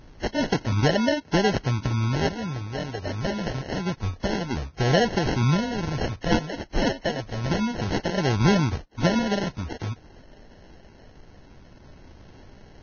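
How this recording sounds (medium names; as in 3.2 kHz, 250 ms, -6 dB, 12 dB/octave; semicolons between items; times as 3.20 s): phasing stages 2, 0.26 Hz, lowest notch 220–2100 Hz; aliases and images of a low sample rate 1.2 kHz, jitter 0%; Vorbis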